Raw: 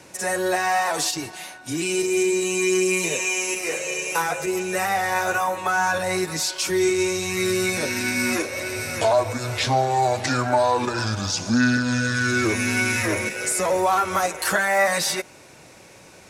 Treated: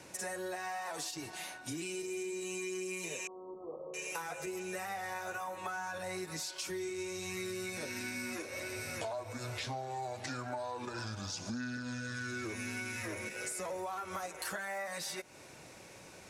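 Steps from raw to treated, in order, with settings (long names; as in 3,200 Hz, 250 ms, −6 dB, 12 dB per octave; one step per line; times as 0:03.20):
downward compressor 6 to 1, threshold −32 dBFS, peak gain reduction 16 dB
0:03.27–0:03.94: linear-phase brick-wall low-pass 1,300 Hz
level −6 dB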